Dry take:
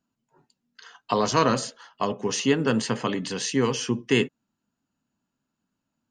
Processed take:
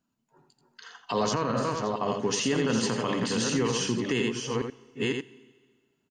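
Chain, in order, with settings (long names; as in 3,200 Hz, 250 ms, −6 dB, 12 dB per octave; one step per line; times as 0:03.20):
delay that plays each chunk backwards 513 ms, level −6 dB
single-tap delay 84 ms −7 dB
four-comb reverb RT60 1.6 s, combs from 27 ms, DRR 20 dB
brickwall limiter −17 dBFS, peak gain reduction 11 dB
0:01.34–0:02.08: high-shelf EQ 2,800 Hz −10.5 dB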